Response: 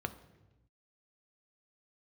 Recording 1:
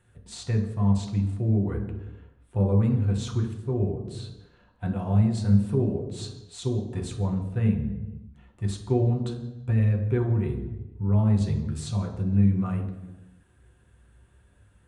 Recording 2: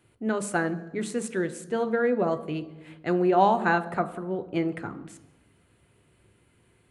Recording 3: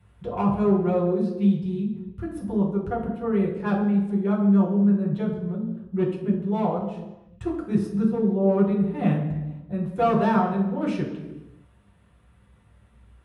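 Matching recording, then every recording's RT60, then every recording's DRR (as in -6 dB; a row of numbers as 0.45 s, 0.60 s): 2; 1.0 s, 1.0 s, 1.0 s; -0.5 dB, 9.0 dB, -6.0 dB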